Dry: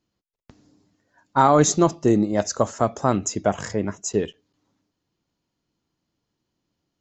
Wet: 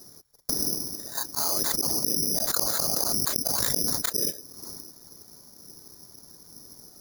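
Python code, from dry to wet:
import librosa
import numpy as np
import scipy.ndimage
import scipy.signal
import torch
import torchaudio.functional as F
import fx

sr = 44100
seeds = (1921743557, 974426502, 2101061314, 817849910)

y = fx.wiener(x, sr, points=15)
y = fx.whisperise(y, sr, seeds[0])
y = fx.low_shelf(y, sr, hz=110.0, db=-5.5)
y = (np.kron(y[::8], np.eye(8)[0]) * 8)[:len(y)]
y = fx.auto_swell(y, sr, attack_ms=493.0)
y = fx.env_flatten(y, sr, amount_pct=100)
y = y * 10.0 ** (-17.0 / 20.0)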